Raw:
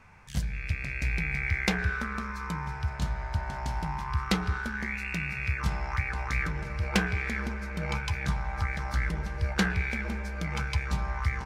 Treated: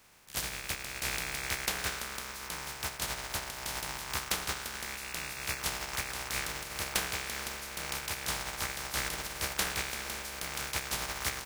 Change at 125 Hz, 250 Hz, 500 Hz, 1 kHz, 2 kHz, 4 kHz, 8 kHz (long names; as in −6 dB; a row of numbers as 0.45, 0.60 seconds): −15.5, −13.5, −3.5, −4.0, −4.5, +5.0, +11.0 decibels